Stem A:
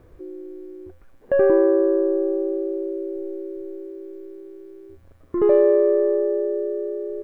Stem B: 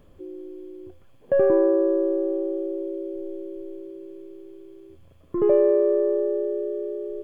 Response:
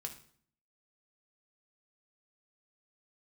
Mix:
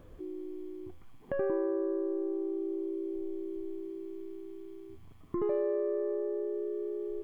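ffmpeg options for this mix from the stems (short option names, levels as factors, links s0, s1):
-filter_complex "[0:a]volume=0.531[s0];[1:a]alimiter=limit=0.0891:level=0:latency=1:release=169,volume=0.668[s1];[s0][s1]amix=inputs=2:normalize=0,acompressor=threshold=0.02:ratio=2"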